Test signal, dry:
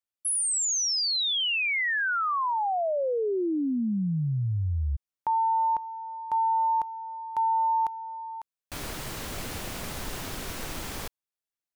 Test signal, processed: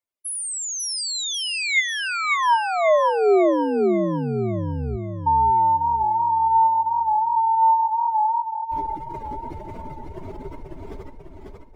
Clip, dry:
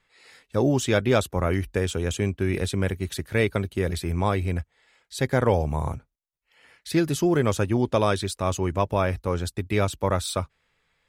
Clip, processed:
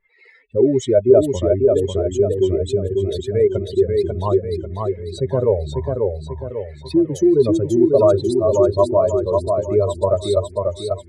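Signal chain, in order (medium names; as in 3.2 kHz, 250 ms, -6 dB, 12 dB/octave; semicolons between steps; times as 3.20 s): spectral contrast enhancement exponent 2.6; small resonant body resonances 400/610/940/2100 Hz, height 14 dB, ringing for 35 ms; modulated delay 543 ms, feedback 46%, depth 88 cents, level -3.5 dB; trim -1.5 dB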